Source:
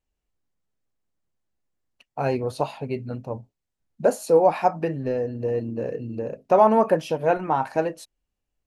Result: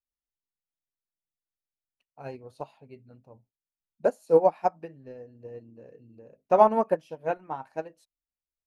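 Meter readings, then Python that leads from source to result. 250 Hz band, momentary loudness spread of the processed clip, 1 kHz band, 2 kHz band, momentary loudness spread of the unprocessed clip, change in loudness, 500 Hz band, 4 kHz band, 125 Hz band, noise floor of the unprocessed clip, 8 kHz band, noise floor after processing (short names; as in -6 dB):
-9.0 dB, 24 LU, -4.5 dB, -9.0 dB, 15 LU, -2.0 dB, -4.5 dB, n/a, -13.5 dB, -83 dBFS, under -15 dB, under -85 dBFS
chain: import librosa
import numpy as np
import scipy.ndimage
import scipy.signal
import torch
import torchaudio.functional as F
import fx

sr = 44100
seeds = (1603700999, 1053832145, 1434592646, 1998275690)

y = fx.upward_expand(x, sr, threshold_db=-26.0, expansion=2.5)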